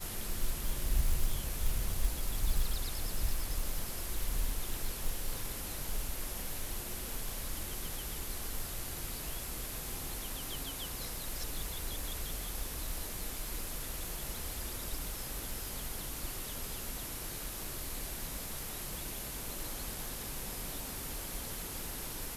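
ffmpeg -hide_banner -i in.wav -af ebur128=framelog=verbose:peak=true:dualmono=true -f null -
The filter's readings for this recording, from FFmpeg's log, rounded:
Integrated loudness:
  I:         -35.8 LUFS
  Threshold: -45.8 LUFS
Loudness range:
  LRA:         2.8 LU
  Threshold: -55.9 LUFS
  LRA low:   -36.6 LUFS
  LRA high:  -33.8 LUFS
True peak:
  Peak:      -16.5 dBFS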